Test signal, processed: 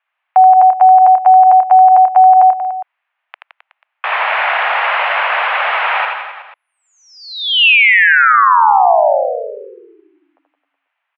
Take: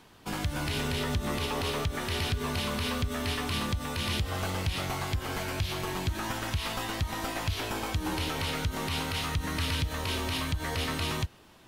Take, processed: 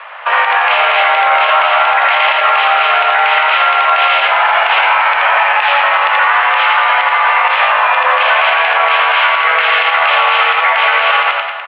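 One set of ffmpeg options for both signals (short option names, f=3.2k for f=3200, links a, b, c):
-af "aecho=1:1:80|168|264.8|371.3|488.4:0.631|0.398|0.251|0.158|0.1,highpass=f=500:t=q:w=0.5412,highpass=f=500:t=q:w=1.307,lowpass=f=2.5k:t=q:w=0.5176,lowpass=f=2.5k:t=q:w=0.7071,lowpass=f=2.5k:t=q:w=1.932,afreqshift=200,alimiter=level_in=30dB:limit=-1dB:release=50:level=0:latency=1,volume=-1dB"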